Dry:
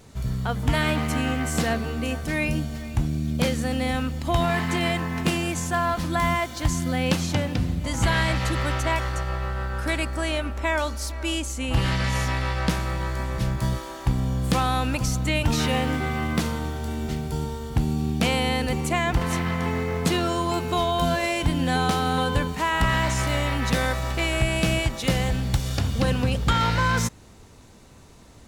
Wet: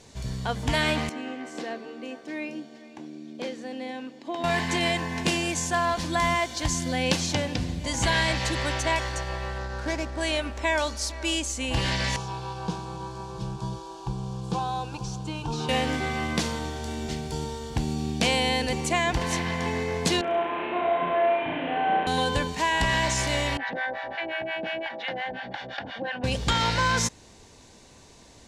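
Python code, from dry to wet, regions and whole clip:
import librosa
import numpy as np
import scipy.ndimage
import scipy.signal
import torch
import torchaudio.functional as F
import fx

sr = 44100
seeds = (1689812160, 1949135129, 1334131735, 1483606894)

y = fx.chain(x, sr, fx.ladder_highpass(hz=250.0, resonance_pct=45),
    fx.peak_eq(hz=11000.0, db=-13.5, octaves=1.8), at=(1.09, 4.44))
y = fx.chain(y, sr, fx.median_filter(points=15),
    fx.high_shelf(hz=9800.0, db=-6.5), at=(9.58, 10.21))
y = fx.chain(y, sr, fx.delta_mod(bps=64000, step_db=-34.0),
    fx.lowpass(hz=1600.0, slope=6),
    fx.fixed_phaser(hz=390.0, stages=8), at=(12.16, 15.69))
y = fx.chain(y, sr, fx.delta_mod(bps=16000, step_db=-37.5),
    fx.highpass(hz=330.0, slope=12),
    fx.room_flutter(wall_m=5.8, rt60_s=1.2), at=(20.21, 22.07))
y = fx.chain(y, sr, fx.cabinet(low_hz=430.0, low_slope=12, high_hz=2700.0, hz=(430.0, 800.0, 1100.0, 1600.0, 2500.0), db=(-10, 5, -8, 6, -7)),
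    fx.harmonic_tremolo(hz=5.7, depth_pct=100, crossover_hz=670.0),
    fx.env_flatten(amount_pct=50), at=(23.57, 26.24))
y = scipy.signal.sosfilt(scipy.signal.butter(2, 6400.0, 'lowpass', fs=sr, output='sos'), y)
y = fx.bass_treble(y, sr, bass_db=-6, treble_db=8)
y = fx.notch(y, sr, hz=1300.0, q=6.4)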